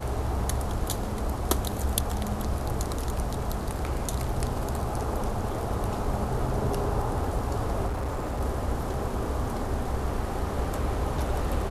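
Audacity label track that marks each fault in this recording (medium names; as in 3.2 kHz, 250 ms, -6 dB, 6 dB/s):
7.870000	8.410000	clipped -26.5 dBFS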